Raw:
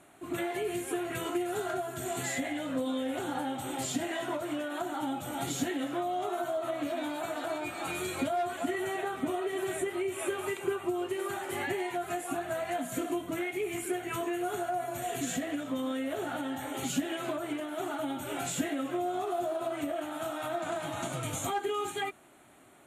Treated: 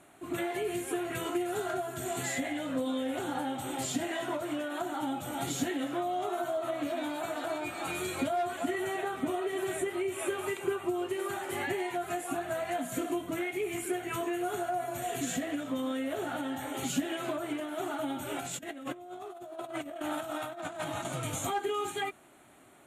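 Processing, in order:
0:18.40–0:21.05: compressor whose output falls as the input rises −38 dBFS, ratio −0.5

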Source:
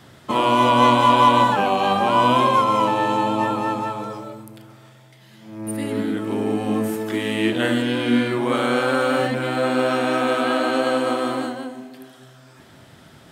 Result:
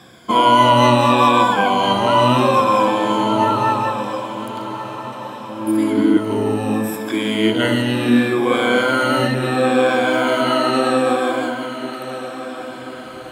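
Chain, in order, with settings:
rippled gain that drifts along the octave scale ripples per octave 1.8, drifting −0.71 Hz, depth 14 dB
0:05.67–0:06.17: parametric band 310 Hz +14.5 dB 0.21 octaves
feedback delay with all-pass diffusion 1,286 ms, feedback 49%, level −12 dB
level +1.5 dB

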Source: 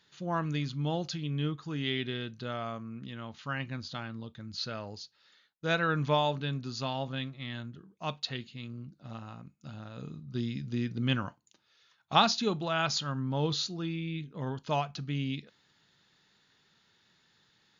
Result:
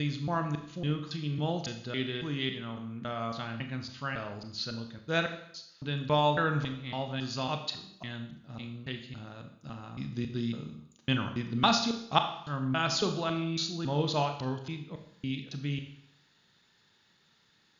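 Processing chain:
slices reordered back to front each 277 ms, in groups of 3
four-comb reverb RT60 0.7 s, combs from 27 ms, DRR 6 dB

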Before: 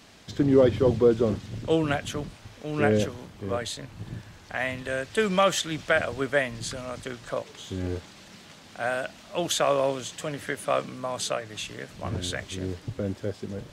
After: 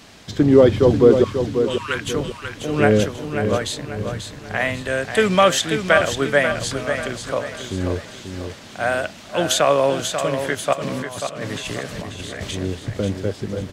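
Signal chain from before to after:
0:01.24–0:02.06: Chebyshev high-pass filter 910 Hz, order 8
0:10.73–0:12.54: compressor whose output falls as the input rises −39 dBFS, ratio −1
on a send: repeating echo 539 ms, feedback 40%, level −7.5 dB
on the sum: level +7 dB

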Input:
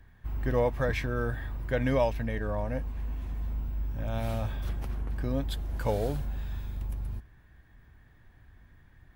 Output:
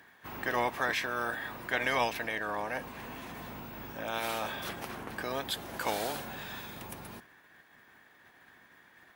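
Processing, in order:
ceiling on every frequency bin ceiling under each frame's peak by 18 dB
high-pass filter 660 Hz 6 dB per octave

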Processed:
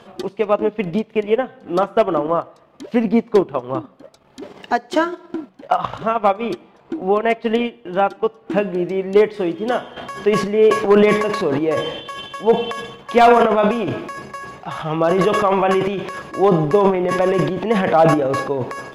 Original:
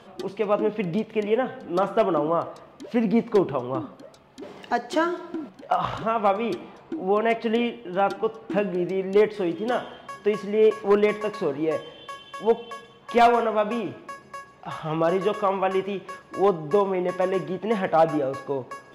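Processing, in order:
transient designer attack +2 dB, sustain −10 dB, from 0:08.46 sustain −2 dB, from 0:09.96 sustain +12 dB
level +4.5 dB

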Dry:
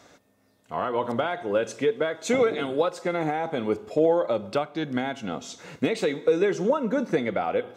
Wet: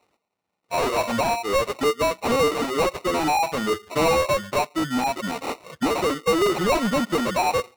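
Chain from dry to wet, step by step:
spectral dynamics exaggerated over time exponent 2
decimation without filtering 27×
mid-hump overdrive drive 32 dB, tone 6,600 Hz, clips at −13.5 dBFS

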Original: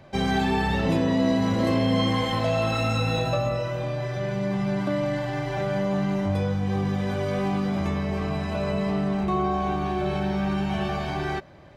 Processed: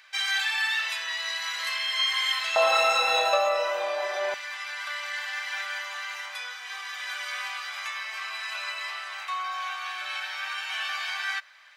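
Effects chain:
high-pass filter 1,500 Hz 24 dB per octave, from 0:02.56 650 Hz, from 0:04.34 1,400 Hz
level +7 dB

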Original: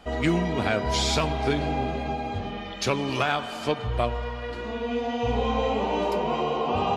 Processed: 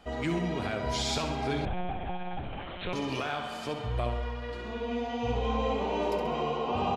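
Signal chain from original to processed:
brickwall limiter −16 dBFS, peak gain reduction 6.5 dB
on a send: repeating echo 67 ms, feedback 48%, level −7.5 dB
0:01.65–0:02.93: on the sum: one-pitch LPC vocoder at 8 kHz 180 Hz
level −5.5 dB

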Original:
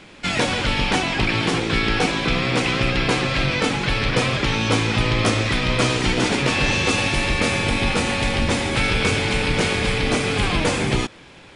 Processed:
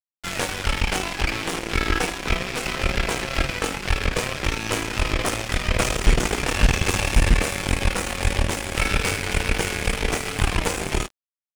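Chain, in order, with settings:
0:05.76–0:07.34: low-shelf EQ 110 Hz +10.5 dB
on a send: ambience of single reflections 21 ms −9.5 dB, 54 ms −16 dB, 76 ms −15.5 dB
on the sum: tape wow and flutter 25 cents
graphic EQ with 10 bands 125 Hz −12 dB, 250 Hz −9 dB, 500 Hz −5 dB, 1,000 Hz −6 dB, 2,000 Hz −4 dB, 4,000 Hz −12 dB
harmonic generator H 5 −20 dB, 8 −13 dB, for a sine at −5.5 dBFS
dead-zone distortion −31.5 dBFS
level +1 dB

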